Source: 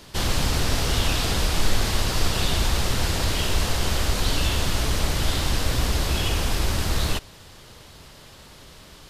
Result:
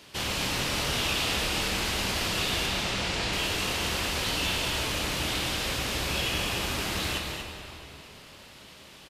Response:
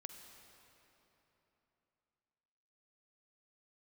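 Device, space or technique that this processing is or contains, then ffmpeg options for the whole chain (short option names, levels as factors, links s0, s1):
stadium PA: -filter_complex "[0:a]asettb=1/sr,asplit=3[s0][s1][s2];[s0]atrim=end=2.664[s3];[s1]atrim=start=2.66:end=3.33,asetpts=PTS-STARTPTS,afade=t=in:d=0.004:c=qsin,afade=t=out:st=0.666:d=0.004:c=qsin,lowpass=7200[s4];[s2]atrim=start=3.326[s5];[s3][s4]acrossfade=d=0.004:c1=hsin:c2=qsin[s6];[s6][s5]acrossfade=d=0.004:c1=qsin:c2=hsin,highpass=f=160:p=1,equalizer=f=2600:t=o:w=0.7:g=6.5,asplit=2[s7][s8];[s8]adelay=26,volume=0.266[s9];[s7][s9]amix=inputs=2:normalize=0,aecho=1:1:169.1|239.1:0.355|0.398[s10];[1:a]atrim=start_sample=2205[s11];[s10][s11]afir=irnorm=-1:irlink=0"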